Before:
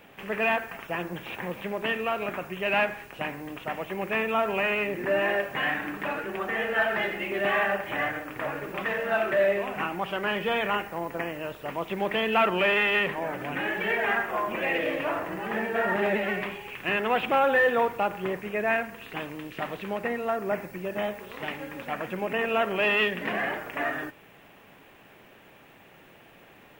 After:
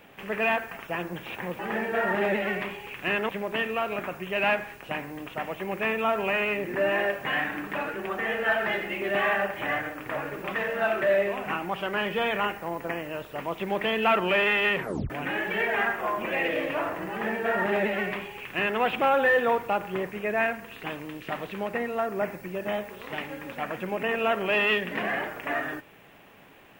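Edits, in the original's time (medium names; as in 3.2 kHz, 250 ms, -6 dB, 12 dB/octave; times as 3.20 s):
13.09 s: tape stop 0.31 s
15.40–17.10 s: copy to 1.59 s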